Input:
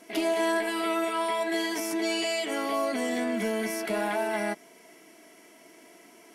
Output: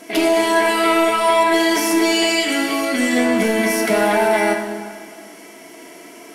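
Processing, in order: 2.29–3.16 band shelf 670 Hz -8 dB; in parallel at -3 dB: hard clip -27.5 dBFS, distortion -11 dB; on the sum: plate-style reverb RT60 1.8 s, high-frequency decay 0.8×, DRR 2.5 dB; gain +7 dB

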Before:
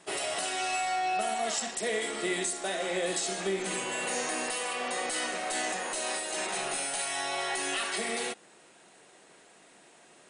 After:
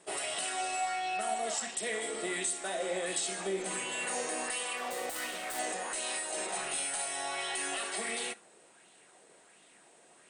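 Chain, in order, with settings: 4.77–5.59 self-modulated delay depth 0.099 ms; bell 8500 Hz +9 dB 0.26 oct; Schroeder reverb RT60 0.33 s, combs from 32 ms, DRR 19 dB; LFO bell 1.4 Hz 450–3400 Hz +7 dB; gain -6 dB

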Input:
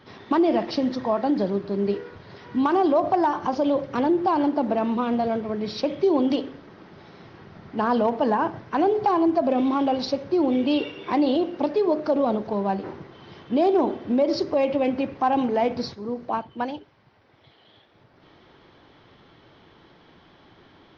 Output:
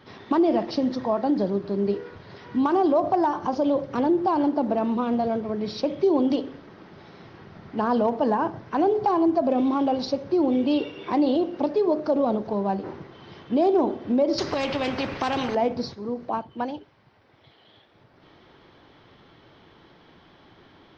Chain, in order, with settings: dynamic EQ 2300 Hz, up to -5 dB, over -40 dBFS, Q 0.74; 14.38–15.55 spectral compressor 2:1

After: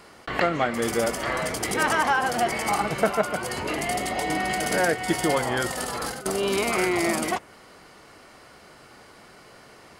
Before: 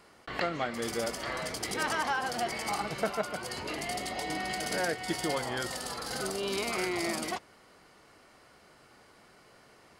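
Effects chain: dynamic EQ 4500 Hz, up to -7 dB, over -54 dBFS, Q 1.5; 5.7–6.26 negative-ratio compressor -40 dBFS, ratio -0.5; gain +9 dB

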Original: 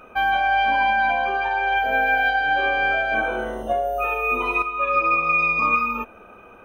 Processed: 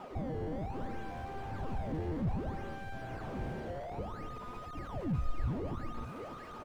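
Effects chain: HPF 110 Hz 12 dB/oct; bell 1200 Hz +9 dB 0.68 oct; compressor 10:1, threshold -23 dBFS, peak gain reduction 15.5 dB; 3.25–5.63 rippled Chebyshev low-pass 4800 Hz, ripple 6 dB; decimation with a swept rate 20×, swing 160% 0.61 Hz; echo 0.588 s -12.5 dB; slew limiter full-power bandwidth 9 Hz; gain -3.5 dB

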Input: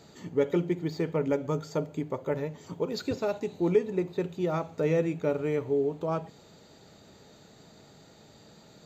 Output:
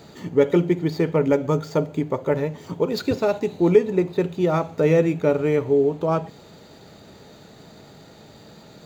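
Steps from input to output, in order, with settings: median filter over 5 samples; gain +8.5 dB

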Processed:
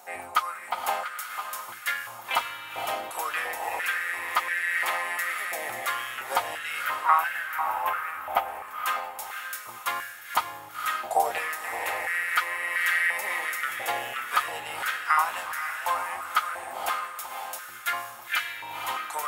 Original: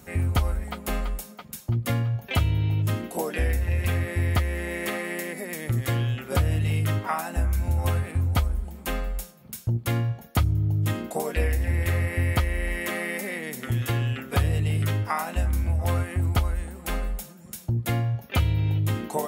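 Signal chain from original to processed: 6.82–8.48 band shelf 6000 Hz -12 dB; diffused feedback echo 0.509 s, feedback 44%, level -6 dB; stepped high-pass 2.9 Hz 770–1600 Hz

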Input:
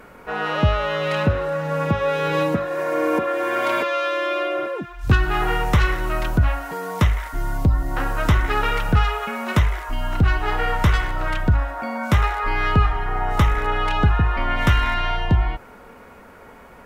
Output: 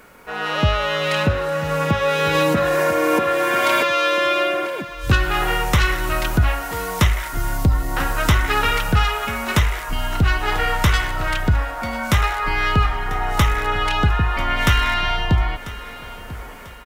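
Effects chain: AGC gain up to 7.5 dB; bit-crush 11-bit; high shelf 2400 Hz +10.5 dB; on a send: feedback echo 0.993 s, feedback 35%, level -16.5 dB; 2.35–2.91 on the sum: fast leveller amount 70%; gain -4.5 dB

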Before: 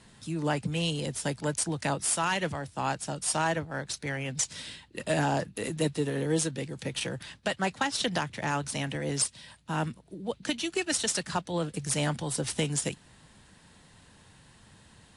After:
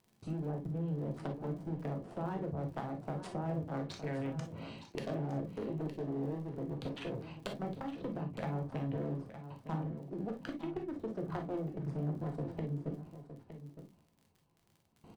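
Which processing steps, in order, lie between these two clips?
Wiener smoothing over 25 samples; notches 60/120/180/240/300 Hz; treble ducked by the level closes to 430 Hz, closed at -28.5 dBFS; low shelf 150 Hz -6 dB; gate with hold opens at -50 dBFS; compressor 6:1, threshold -43 dBFS, peak gain reduction 16 dB; one-sided clip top -44 dBFS; flange 1.7 Hz, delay 4.9 ms, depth 9.3 ms, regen +81%; crackle 36/s -63 dBFS; on a send: echo 0.913 s -11.5 dB; on the sum: non-linear reverb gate 80 ms flat, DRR 3.5 dB; gain +10.5 dB

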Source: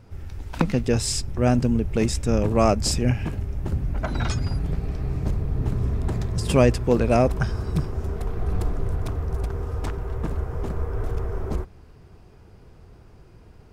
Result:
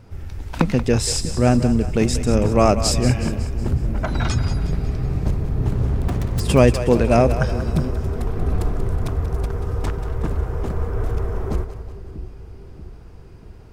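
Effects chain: 5.73–6.4 self-modulated delay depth 0.82 ms; split-band echo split 410 Hz, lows 0.636 s, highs 0.184 s, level -11.5 dB; gain +3.5 dB

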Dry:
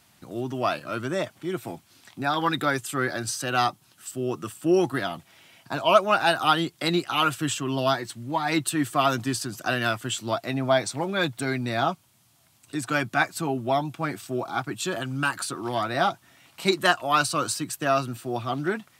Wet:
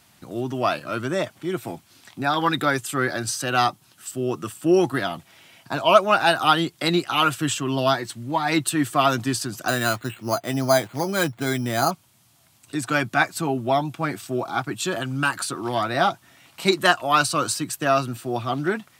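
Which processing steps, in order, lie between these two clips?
9.68–11.91 careless resampling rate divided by 8×, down filtered, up hold; gain +3 dB

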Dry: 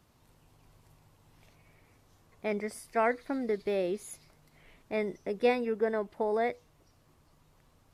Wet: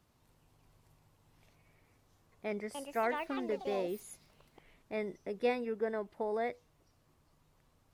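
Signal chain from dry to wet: 2.46–4.92 echoes that change speed 0.285 s, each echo +5 st, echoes 2, each echo -6 dB; gain -5.5 dB

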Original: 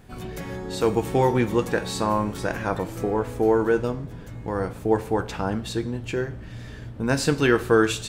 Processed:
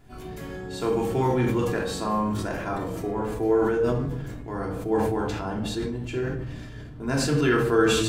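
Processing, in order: shoebox room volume 920 m³, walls furnished, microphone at 3.1 m; sustainer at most 29 dB/s; gain -8 dB

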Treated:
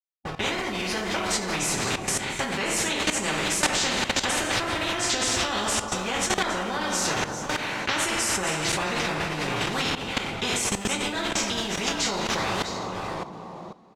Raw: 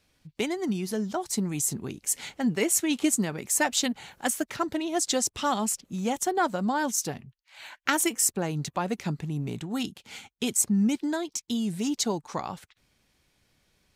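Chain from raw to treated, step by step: reverse delay 0.398 s, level -11.5 dB; high shelf 5400 Hz -9.5 dB; requantised 8-bit, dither none; echo 0.38 s -23 dB; reverb, pre-delay 3 ms, DRR -8.5 dB; level quantiser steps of 15 dB; tape spacing loss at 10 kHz 20 dB; spectral compressor 4:1; gain +1.5 dB

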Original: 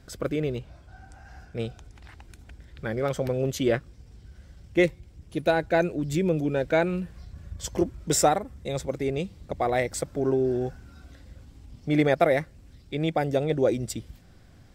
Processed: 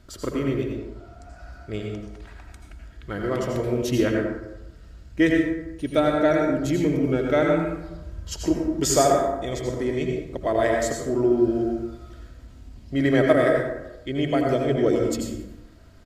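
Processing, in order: comb 2.9 ms, depth 34%; speed mistake 48 kHz file played as 44.1 kHz; reverb RT60 0.95 s, pre-delay 72 ms, DRR 0 dB

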